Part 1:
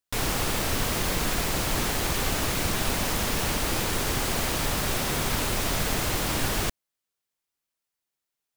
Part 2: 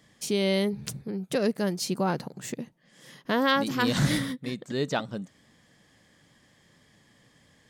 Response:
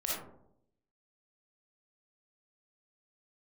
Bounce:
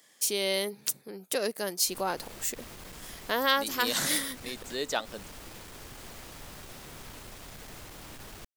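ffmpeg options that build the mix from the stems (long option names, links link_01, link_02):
-filter_complex "[0:a]aeval=exprs='(tanh(14.1*val(0)+0.3)-tanh(0.3))/14.1':channel_layout=same,adelay=1750,volume=-16.5dB[link_01];[1:a]highpass=410,aemphasis=mode=production:type=50fm,volume=-1.5dB,asplit=2[link_02][link_03];[link_03]apad=whole_len=454724[link_04];[link_01][link_04]sidechaincompress=threshold=-38dB:ratio=8:attack=32:release=120[link_05];[link_05][link_02]amix=inputs=2:normalize=0"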